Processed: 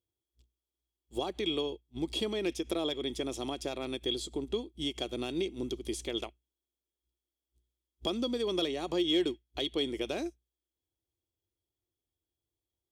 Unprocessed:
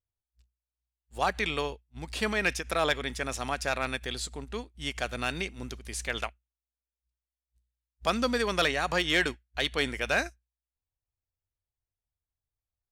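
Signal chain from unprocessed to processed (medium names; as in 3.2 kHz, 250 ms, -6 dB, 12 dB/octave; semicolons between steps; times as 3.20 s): high-pass 56 Hz; peaking EQ 1.6 kHz -13 dB 0.67 oct; compression 3:1, threshold -40 dBFS, peak gain reduction 12.5 dB; small resonant body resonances 340/3300 Hz, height 18 dB, ringing for 35 ms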